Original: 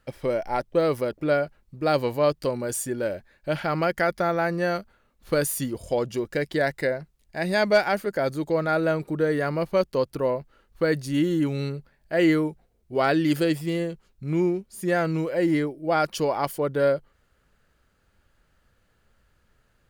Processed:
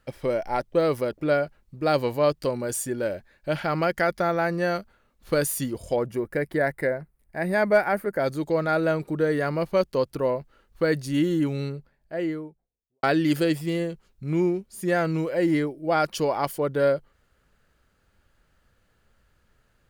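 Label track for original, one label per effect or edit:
5.960000	8.200000	flat-topped bell 4,500 Hz −12 dB
11.250000	13.030000	fade out and dull

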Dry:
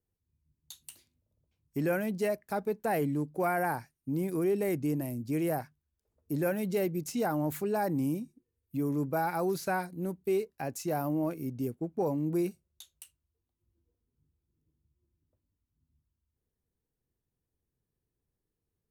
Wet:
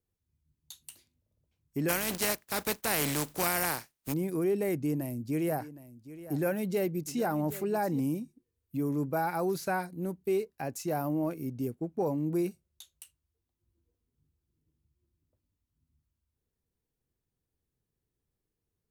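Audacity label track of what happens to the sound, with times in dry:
1.880000	4.120000	compressing power law on the bin magnitudes exponent 0.4
4.710000	8.000000	single-tap delay 766 ms −15.5 dB

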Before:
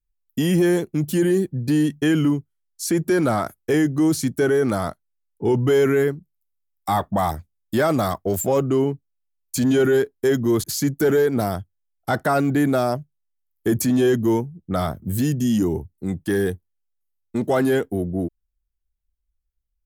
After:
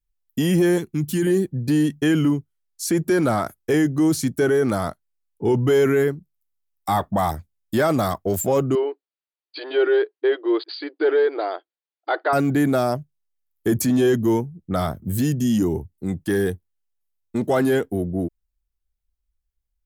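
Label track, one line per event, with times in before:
0.780000	1.270000	parametric band 570 Hz −13.5 dB
8.750000	12.330000	linear-phase brick-wall band-pass 300–4,900 Hz

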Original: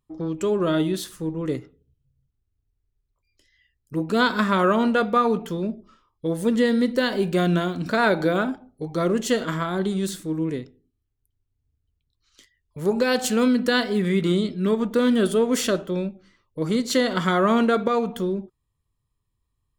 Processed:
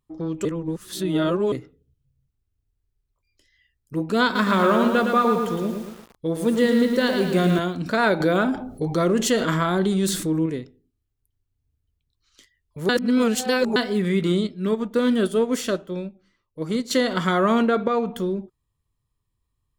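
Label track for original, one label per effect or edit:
0.450000	1.520000	reverse
4.240000	7.590000	feedback echo at a low word length 112 ms, feedback 55%, word length 7 bits, level −5 dB
8.200000	10.460000	envelope flattener amount 50%
12.890000	13.760000	reverse
14.470000	16.910000	expander for the loud parts, over −32 dBFS
17.620000	18.160000	low-pass filter 3,300 Hz 6 dB per octave

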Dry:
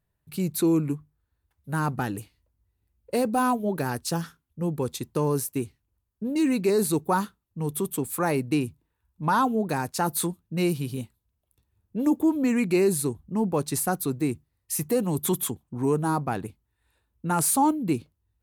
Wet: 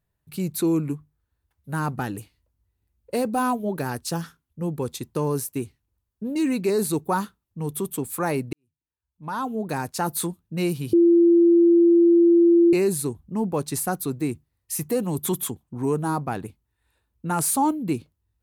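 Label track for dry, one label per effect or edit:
8.530000	9.770000	fade in quadratic
10.930000	12.730000	beep over 341 Hz −12 dBFS

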